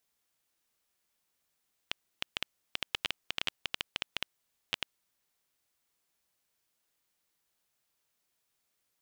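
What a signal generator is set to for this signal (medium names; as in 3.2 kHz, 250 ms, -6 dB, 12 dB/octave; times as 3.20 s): random clicks 8.8 per s -12.5 dBFS 3.00 s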